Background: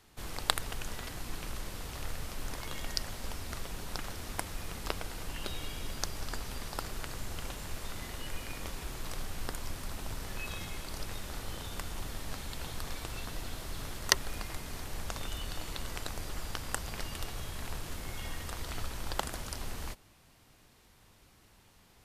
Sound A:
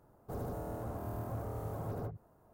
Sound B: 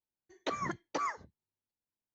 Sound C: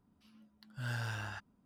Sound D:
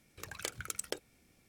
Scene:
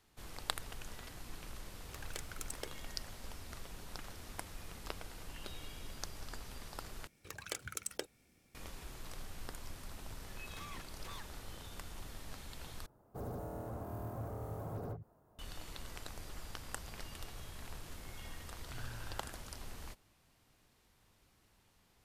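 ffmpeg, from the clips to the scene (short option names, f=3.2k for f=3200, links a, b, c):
-filter_complex "[4:a]asplit=2[a][b];[0:a]volume=-8.5dB[c];[2:a]aeval=exprs='0.0178*(abs(mod(val(0)/0.0178+3,4)-2)-1)':c=same[d];[c]asplit=3[e][f][g];[e]atrim=end=7.074[h];[b]atrim=end=1.48,asetpts=PTS-STARTPTS,volume=-2.5dB[i];[f]atrim=start=8.546:end=12.864[j];[1:a]atrim=end=2.53,asetpts=PTS-STARTPTS,volume=-3dB[k];[g]atrim=start=15.386[l];[a]atrim=end=1.48,asetpts=PTS-STARTPTS,volume=-7dB,afade=t=in:d=0.004:c=hsin,afade=t=out:st=1.476:d=0.004:c=hsin,adelay=1710[m];[d]atrim=end=2.14,asetpts=PTS-STARTPTS,volume=-10.5dB,afade=t=in:d=0.004:c=hsin,afade=t=out:st=2.136:d=0.004:c=hsin,adelay=445410S[n];[3:a]atrim=end=1.65,asetpts=PTS-STARTPTS,volume=-12dB,afade=t=in:d=0.004:c=hsin,afade=t=out:st=1.646:d=0.004:c=hsin,adelay=17930[o];[h][i]acrossfade=d=0.004:c1=hsin:c2=hsin[p];[p][j]acrossfade=d=0.004:c1=hsin:c2=hsin[q];[q][k]acrossfade=d=0.004:c1=hsin:c2=hsin[r];[r][l]acrossfade=d=0.004:c1=hsin:c2=hsin[s];[s][m][n][o]amix=inputs=4:normalize=0"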